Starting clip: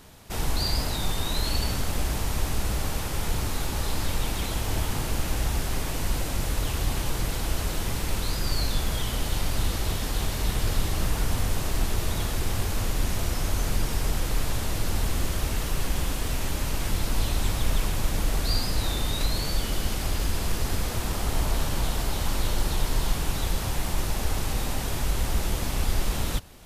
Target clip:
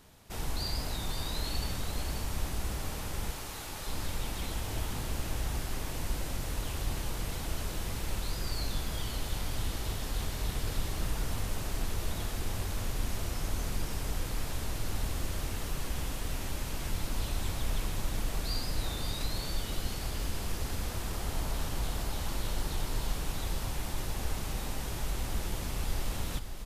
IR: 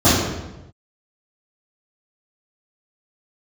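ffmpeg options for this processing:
-filter_complex "[0:a]asettb=1/sr,asplit=3[link_01][link_02][link_03];[link_01]atrim=end=3.304[link_04];[link_02]atrim=start=3.3:end=3.87,asetpts=PTS-STARTPTS,afade=type=in:duration=0.004:curve=qsin,afade=type=out:start_time=0.566:duration=0.004:curve=qsin,highpass=frequency=530:poles=1[link_05];[link_03]atrim=start=3.866[link_06];[link_04][link_05]acrossfade=duration=0.004:curve1=hsin:curve2=qsin[link_07];[link_07][link_06]acrossfade=duration=0.004:curve1=qsin:curve2=hsin,aecho=1:1:534:0.376,volume=-8dB"

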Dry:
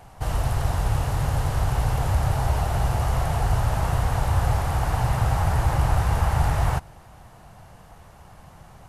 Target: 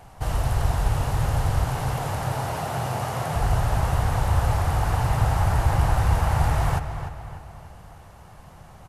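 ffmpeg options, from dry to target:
ffmpeg -i in.wav -filter_complex "[0:a]asettb=1/sr,asplit=3[link_01][link_02][link_03];[link_01]atrim=end=1.644[link_04];[link_02]atrim=start=1.64:end=3.36,asetpts=PTS-STARTPTS,afade=type=in:duration=0.004:curve=qsin,afade=type=out:start_time=1.716:duration=0.004:curve=qsin,highpass=frequency=120:width=0.5412,highpass=frequency=120:width=1.3066[link_05];[link_03]atrim=start=3.356[link_06];[link_04][link_05]acrossfade=duration=0.004:curve1=hsin:curve2=qsin[link_07];[link_07][link_06]acrossfade=duration=0.004:curve1=qsin:curve2=hsin,asplit=2[link_08][link_09];[link_09]adelay=298,lowpass=frequency=4000:poles=1,volume=-9dB,asplit=2[link_10][link_11];[link_11]adelay=298,lowpass=frequency=4000:poles=1,volume=0.48,asplit=2[link_12][link_13];[link_13]adelay=298,lowpass=frequency=4000:poles=1,volume=0.48,asplit=2[link_14][link_15];[link_15]adelay=298,lowpass=frequency=4000:poles=1,volume=0.48,asplit=2[link_16][link_17];[link_17]adelay=298,lowpass=frequency=4000:poles=1,volume=0.48[link_18];[link_08][link_10][link_12][link_14][link_16][link_18]amix=inputs=6:normalize=0" out.wav

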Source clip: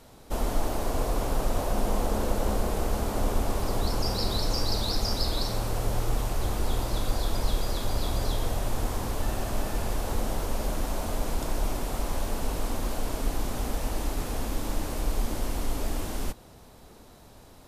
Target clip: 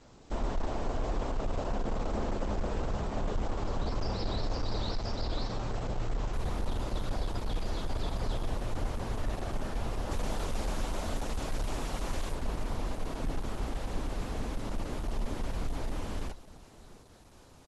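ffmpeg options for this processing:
ffmpeg -i in.wav -filter_complex "[0:a]volume=21.5dB,asoftclip=hard,volume=-21.5dB,acrossover=split=3900[link_01][link_02];[link_02]acompressor=threshold=-49dB:ratio=4:attack=1:release=60[link_03];[link_01][link_03]amix=inputs=2:normalize=0,asettb=1/sr,asplit=3[link_04][link_05][link_06];[link_04]atrim=end=10.114[link_07];[link_05]atrim=start=10.11:end=12.35,asetpts=PTS-STARTPTS,afade=type=in:duration=0.004:curve=qsin,afade=type=out:start_time=2.236:duration=0.004:curve=qsin,highshelf=frequency=2000:gain=6.5[link_08];[link_06]atrim=start=12.346[link_09];[link_07][link_08]acrossfade=duration=0.004:curve1=hsin:curve2=qsin[link_10];[link_10][link_09]acrossfade=duration=0.004:curve1=qsin:curve2=hsin,aecho=1:1:645:0.1,volume=-3dB" -ar 48000 -c:a libopus -b:a 12k out.opus

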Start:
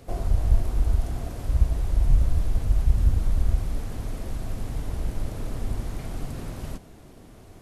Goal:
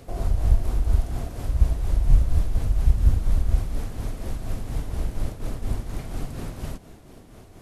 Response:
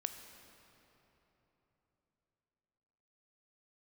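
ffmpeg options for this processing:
-filter_complex "[0:a]tremolo=f=4.2:d=0.45,asplit=3[link_01][link_02][link_03];[link_01]afade=type=out:start_time=5.28:duration=0.02[link_04];[link_02]agate=range=-33dB:threshold=-29dB:ratio=3:detection=peak,afade=type=in:start_time=5.28:duration=0.02,afade=type=out:start_time=5.97:duration=0.02[link_05];[link_03]afade=type=in:start_time=5.97:duration=0.02[link_06];[link_04][link_05][link_06]amix=inputs=3:normalize=0,volume=3dB"

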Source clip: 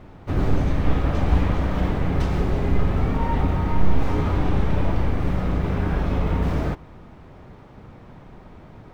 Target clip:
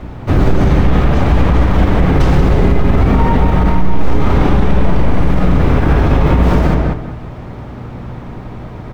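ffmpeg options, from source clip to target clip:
ffmpeg -i in.wav -filter_complex "[0:a]aeval=exprs='val(0)+0.00794*(sin(2*PI*60*n/s)+sin(2*PI*2*60*n/s)/2+sin(2*PI*3*60*n/s)/3+sin(2*PI*4*60*n/s)/4+sin(2*PI*5*60*n/s)/5)':channel_layout=same,asplit=2[link_01][link_02];[link_02]adelay=191,lowpass=frequency=2800:poles=1,volume=-4dB,asplit=2[link_03][link_04];[link_04]adelay=191,lowpass=frequency=2800:poles=1,volume=0.27,asplit=2[link_05][link_06];[link_06]adelay=191,lowpass=frequency=2800:poles=1,volume=0.27,asplit=2[link_07][link_08];[link_08]adelay=191,lowpass=frequency=2800:poles=1,volume=0.27[link_09];[link_03][link_05][link_07][link_09]amix=inputs=4:normalize=0[link_10];[link_01][link_10]amix=inputs=2:normalize=0,alimiter=level_in=14dB:limit=-1dB:release=50:level=0:latency=1,volume=-1dB" out.wav

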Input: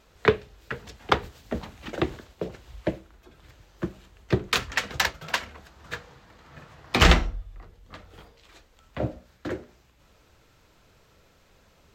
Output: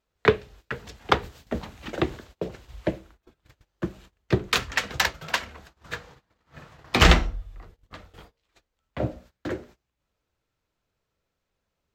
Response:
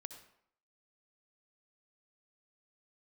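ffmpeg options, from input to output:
-af "agate=range=-22dB:threshold=-49dB:ratio=16:detection=peak,volume=1dB"

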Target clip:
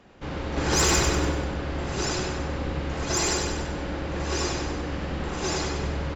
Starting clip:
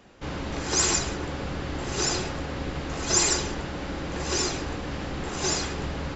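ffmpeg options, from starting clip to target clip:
ffmpeg -i in.wav -filter_complex "[0:a]lowpass=frequency=3800:poles=1,asettb=1/sr,asplit=3[link_01][link_02][link_03];[link_01]atrim=end=0.574[link_04];[link_02]atrim=start=0.57:end=1.32,asetpts=PTS-STARTPTS,afade=type=in:duration=0.004:curve=qsin,afade=type=out:start_time=0.746:duration=0.004:curve=qsin,acontrast=39[link_05];[link_03]atrim=start=1.316[link_06];[link_04][link_05]acrossfade=duration=0.004:curve1=hsin:curve2=qsin[link_07];[link_07][link_06]acrossfade=duration=0.004:curve1=qsin:curve2=hsin,asoftclip=type=tanh:threshold=-14.5dB,asplit=2[link_08][link_09];[link_09]aecho=0:1:97|194|291|388|485|582:0.562|0.287|0.146|0.0746|0.038|0.0194[link_10];[link_08][link_10]amix=inputs=2:normalize=0" out.wav

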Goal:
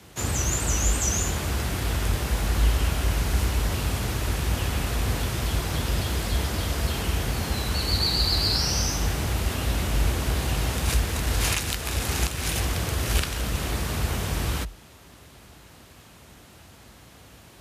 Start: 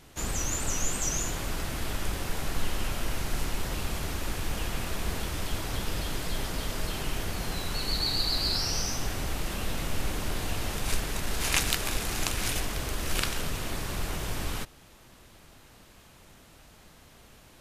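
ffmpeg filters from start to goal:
ffmpeg -i in.wav -af "alimiter=limit=-12.5dB:level=0:latency=1:release=379,afreqshift=44,volume=4.5dB" out.wav

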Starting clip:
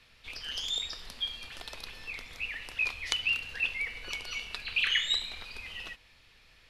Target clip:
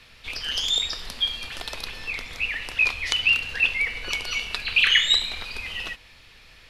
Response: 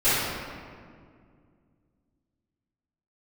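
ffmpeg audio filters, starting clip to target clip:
-filter_complex "[0:a]asettb=1/sr,asplit=3[link_01][link_02][link_03];[link_01]atrim=end=1.884[link_04];[link_02]atrim=start=1.88:end=4.12,asetpts=PTS-STARTPTS,afade=type=in:duration=0.004:curve=qsin,afade=type=out:start_time=2.236:duration=0.004:curve=qsin,highshelf=frequency=12000:gain=-4.5[link_05];[link_03]atrim=start=4.116[link_06];[link_04][link_05]acrossfade=duration=0.004:curve1=hsin:curve2=qsin[link_07];[link_07][link_06]acrossfade=duration=0.004:curve1=qsin:curve2=hsin,alimiter=level_in=10.5dB:limit=-1dB:release=50:level=0:latency=1,volume=-1dB"

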